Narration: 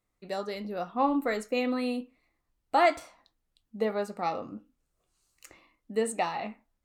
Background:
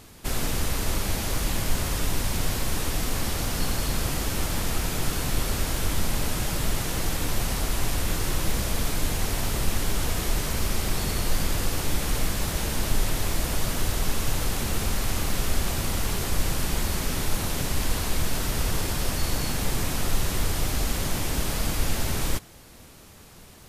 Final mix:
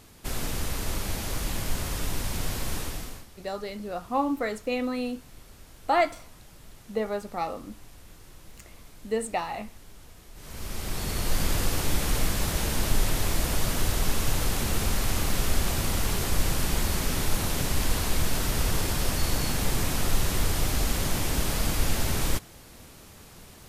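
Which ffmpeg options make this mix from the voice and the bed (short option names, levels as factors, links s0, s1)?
-filter_complex "[0:a]adelay=3150,volume=1[s0];[1:a]volume=9.44,afade=t=out:st=2.75:d=0.51:silence=0.105925,afade=t=in:st=10.34:d=1.16:silence=0.0668344[s1];[s0][s1]amix=inputs=2:normalize=0"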